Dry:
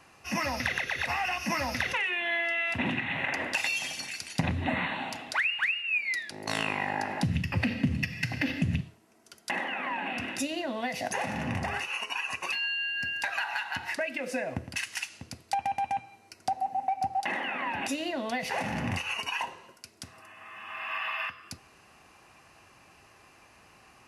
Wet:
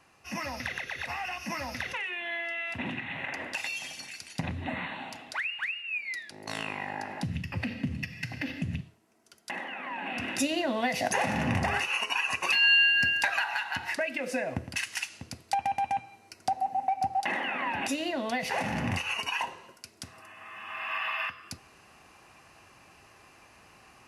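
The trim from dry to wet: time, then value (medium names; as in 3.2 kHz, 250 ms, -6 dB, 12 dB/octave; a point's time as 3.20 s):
9.86 s -5 dB
10.45 s +4 dB
12.44 s +4 dB
12.74 s +11.5 dB
13.51 s +1 dB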